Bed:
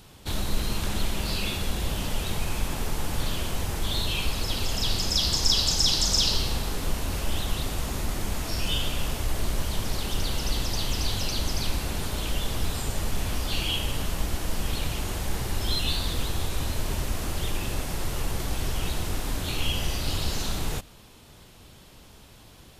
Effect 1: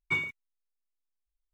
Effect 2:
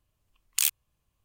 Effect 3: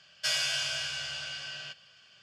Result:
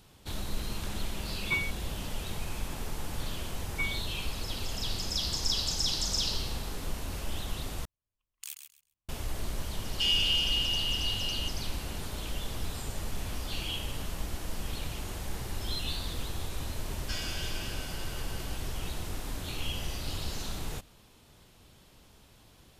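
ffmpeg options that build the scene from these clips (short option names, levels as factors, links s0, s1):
-filter_complex "[1:a]asplit=2[s0][s1];[3:a]asplit=2[s2][s3];[0:a]volume=0.422[s4];[2:a]aecho=1:1:132|264|396:0.398|0.0756|0.0144[s5];[s2]highpass=f=2900:t=q:w=13[s6];[s3]acrossover=split=9300[s7][s8];[s8]acompressor=threshold=0.00112:ratio=4:attack=1:release=60[s9];[s7][s9]amix=inputs=2:normalize=0[s10];[s4]asplit=2[s11][s12];[s11]atrim=end=7.854[s13];[s5]atrim=end=1.24,asetpts=PTS-STARTPTS,volume=0.126[s14];[s12]atrim=start=9.086[s15];[s0]atrim=end=1.53,asetpts=PTS-STARTPTS,volume=0.891,afade=t=in:d=0.004:c=hsin,afade=t=out:st=1.526:d=0.004:c=hsin,adelay=1400[s16];[s1]atrim=end=1.53,asetpts=PTS-STARTPTS,volume=0.596,afade=t=in:d=0.004:c=hsin,afade=t=out:st=1.526:d=0.004:c=hsin,adelay=3680[s17];[s6]atrim=end=2.22,asetpts=PTS-STARTPTS,volume=0.266,afade=t=in:d=0.004:c=hsin,afade=t=out:st=2.216:d=0.004:c=hsin,adelay=9760[s18];[s10]atrim=end=2.22,asetpts=PTS-STARTPTS,volume=0.355,afade=t=in:d=0.004:c=hsin,afade=t=out:st=2.216:d=0.004:c=hsin,adelay=16850[s19];[s13][s14]acrossfade=d=0.004:c1=hsin:c2=hsin[s20];[s20][s15]acrossfade=d=0.004:c1=hsin:c2=hsin[s21];[s21][s16][s17][s18][s19]amix=inputs=5:normalize=0"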